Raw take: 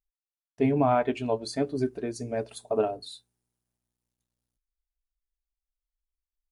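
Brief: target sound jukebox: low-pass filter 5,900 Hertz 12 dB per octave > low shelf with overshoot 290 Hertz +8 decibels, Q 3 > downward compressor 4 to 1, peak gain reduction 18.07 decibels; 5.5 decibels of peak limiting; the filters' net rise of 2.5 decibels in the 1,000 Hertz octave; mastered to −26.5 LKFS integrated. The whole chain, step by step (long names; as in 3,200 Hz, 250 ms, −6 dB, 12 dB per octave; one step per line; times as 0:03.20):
parametric band 1,000 Hz +5.5 dB
brickwall limiter −14.5 dBFS
low-pass filter 5,900 Hz 12 dB per octave
low shelf with overshoot 290 Hz +8 dB, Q 3
downward compressor 4 to 1, threshold −35 dBFS
level +11.5 dB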